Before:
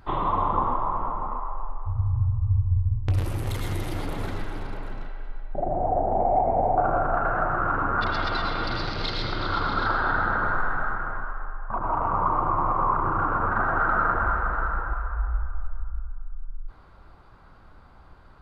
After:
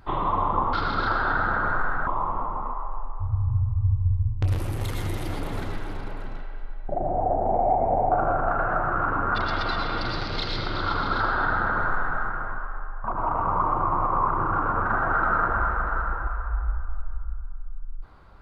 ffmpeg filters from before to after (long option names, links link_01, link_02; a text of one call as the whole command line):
ffmpeg -i in.wav -filter_complex "[0:a]asplit=3[link_01][link_02][link_03];[link_01]atrim=end=0.732[link_04];[link_02]atrim=start=9.518:end=10.862[link_05];[link_03]atrim=start=0.728[link_06];[link_04][link_05]acrossfade=duration=0.004:curve1=hsin:curve2=hsin[link_07];[link_07][link_06]acrossfade=duration=0.004:curve1=hsin:curve2=hsin" out.wav